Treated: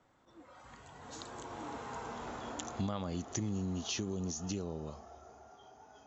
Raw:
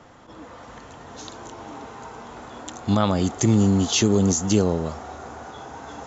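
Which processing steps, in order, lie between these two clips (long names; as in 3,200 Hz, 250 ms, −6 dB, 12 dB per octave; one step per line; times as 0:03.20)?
source passing by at 0:02.21, 19 m/s, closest 14 metres
noise reduction from a noise print of the clip's start 7 dB
downward compressor 4 to 1, threshold −31 dBFS, peak gain reduction 12 dB
level −3.5 dB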